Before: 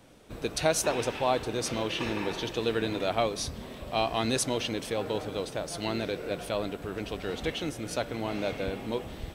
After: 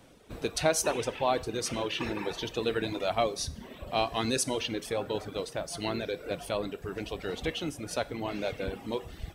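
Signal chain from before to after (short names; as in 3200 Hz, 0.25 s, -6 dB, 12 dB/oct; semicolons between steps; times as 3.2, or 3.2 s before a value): reverb removal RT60 0.98 s; reverb, pre-delay 3 ms, DRR 14.5 dB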